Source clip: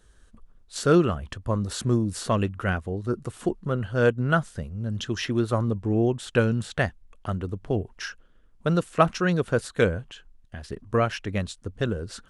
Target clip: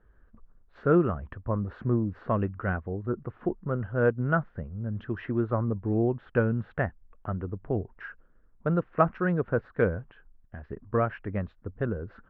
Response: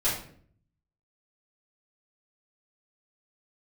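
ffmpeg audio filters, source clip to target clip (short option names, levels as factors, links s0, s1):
-af "lowpass=f=1800:w=0.5412,lowpass=f=1800:w=1.3066,volume=0.708"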